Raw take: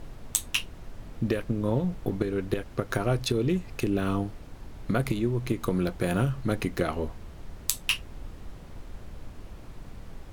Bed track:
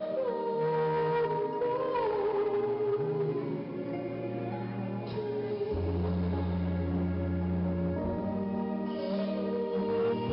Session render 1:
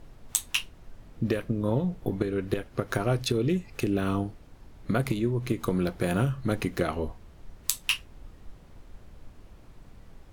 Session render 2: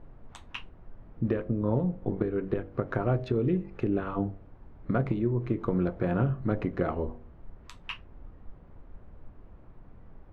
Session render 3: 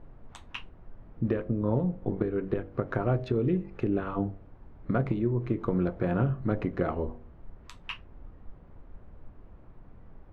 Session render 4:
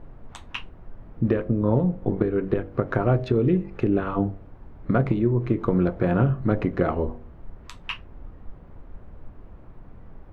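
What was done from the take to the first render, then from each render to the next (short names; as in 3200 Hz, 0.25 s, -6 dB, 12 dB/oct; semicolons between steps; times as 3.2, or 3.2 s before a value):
noise print and reduce 7 dB
LPF 1400 Hz 12 dB/oct; de-hum 48.4 Hz, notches 17
nothing audible
gain +6 dB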